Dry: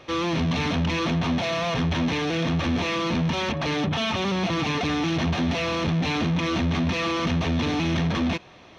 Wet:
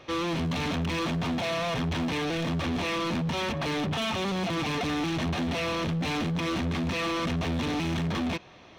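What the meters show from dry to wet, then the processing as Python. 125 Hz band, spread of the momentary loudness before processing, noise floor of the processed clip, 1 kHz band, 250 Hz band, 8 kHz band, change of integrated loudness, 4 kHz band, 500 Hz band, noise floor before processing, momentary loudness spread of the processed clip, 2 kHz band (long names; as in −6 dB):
−5.0 dB, 1 LU, −51 dBFS, −3.5 dB, −4.5 dB, can't be measured, −4.5 dB, −4.0 dB, −3.5 dB, −48 dBFS, 1 LU, −4.0 dB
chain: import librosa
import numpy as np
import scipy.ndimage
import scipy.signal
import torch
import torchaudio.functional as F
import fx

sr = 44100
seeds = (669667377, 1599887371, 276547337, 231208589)

y = np.clip(x, -10.0 ** (-23.5 / 20.0), 10.0 ** (-23.5 / 20.0))
y = F.gain(torch.from_numpy(y), -2.5).numpy()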